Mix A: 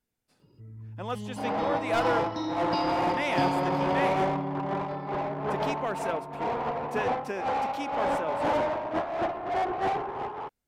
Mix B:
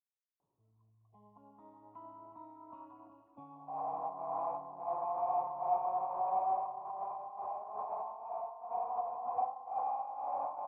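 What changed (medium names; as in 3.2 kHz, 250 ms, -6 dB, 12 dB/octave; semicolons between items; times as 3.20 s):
speech: muted; second sound: entry +2.30 s; master: add cascade formant filter a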